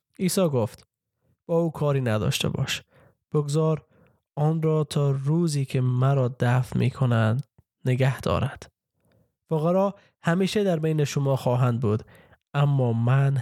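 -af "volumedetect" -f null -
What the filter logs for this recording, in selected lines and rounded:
mean_volume: -24.3 dB
max_volume: -8.8 dB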